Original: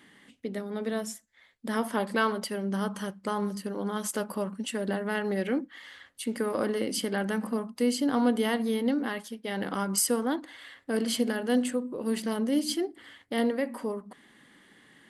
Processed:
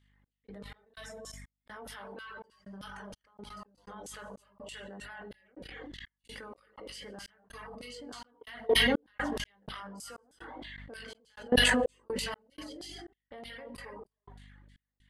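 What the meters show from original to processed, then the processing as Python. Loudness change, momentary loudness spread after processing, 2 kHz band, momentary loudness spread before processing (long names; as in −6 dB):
−3.0 dB, 22 LU, +0.5 dB, 10 LU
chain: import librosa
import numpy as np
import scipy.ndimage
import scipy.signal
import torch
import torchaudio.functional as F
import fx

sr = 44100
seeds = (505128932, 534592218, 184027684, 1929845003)

y = fx.room_early_taps(x, sr, ms=(20, 55), db=(-5.5, -16.0))
y = fx.rev_gated(y, sr, seeds[0], gate_ms=340, shape='flat', drr_db=0.5)
y = fx.filter_lfo_bandpass(y, sr, shape='saw_down', hz=3.2, low_hz=460.0, high_hz=5200.0, q=0.77)
y = fx.dereverb_blind(y, sr, rt60_s=0.98)
y = fx.add_hum(y, sr, base_hz=50, snr_db=19)
y = fx.level_steps(y, sr, step_db=24)
y = fx.step_gate(y, sr, bpm=62, pattern='x.x.xx.xxx.x', floor_db=-60.0, edge_ms=4.5)
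y = fx.sustainer(y, sr, db_per_s=20.0)
y = y * 10.0 ** (2.0 / 20.0)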